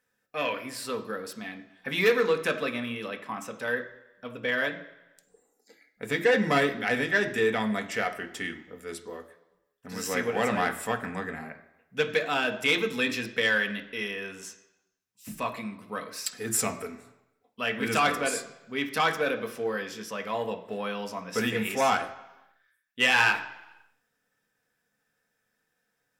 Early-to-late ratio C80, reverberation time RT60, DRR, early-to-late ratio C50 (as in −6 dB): 15.0 dB, 1.0 s, 5.0 dB, 12.5 dB